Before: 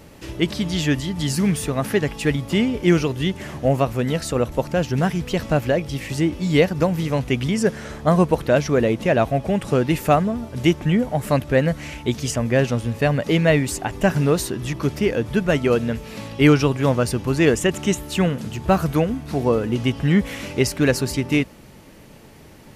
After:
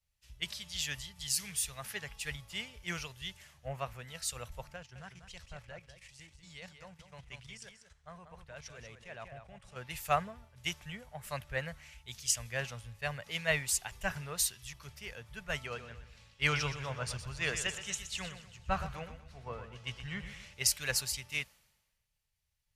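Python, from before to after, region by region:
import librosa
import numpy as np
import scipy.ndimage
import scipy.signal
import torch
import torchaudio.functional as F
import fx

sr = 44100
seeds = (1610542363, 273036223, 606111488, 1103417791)

y = fx.chain(x, sr, fx.lowpass(hz=10000.0, slope=24),
    fx.level_steps(step_db=11),
    fx.echo_single(ms=193, db=-6.5), at=(4.76, 9.76))
y = fx.chain(y, sr, fx.lowpass(hz=7500.0, slope=12),
    fx.echo_feedback(ms=123, feedback_pct=56, wet_db=-8.0), at=(15.66, 20.54))
y = fx.tone_stack(y, sr, knobs='10-0-10')
y = fx.band_widen(y, sr, depth_pct=100)
y = y * librosa.db_to_amplitude(-8.0)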